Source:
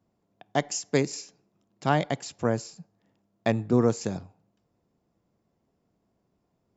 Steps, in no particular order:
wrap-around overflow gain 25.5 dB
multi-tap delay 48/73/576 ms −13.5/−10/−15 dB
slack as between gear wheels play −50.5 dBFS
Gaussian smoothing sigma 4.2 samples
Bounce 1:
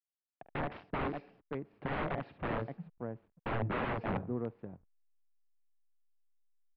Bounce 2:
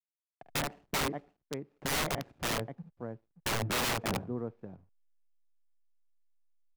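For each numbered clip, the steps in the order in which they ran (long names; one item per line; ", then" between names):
multi-tap delay, then wrap-around overflow, then slack as between gear wheels, then Gaussian smoothing
Gaussian smoothing, then slack as between gear wheels, then multi-tap delay, then wrap-around overflow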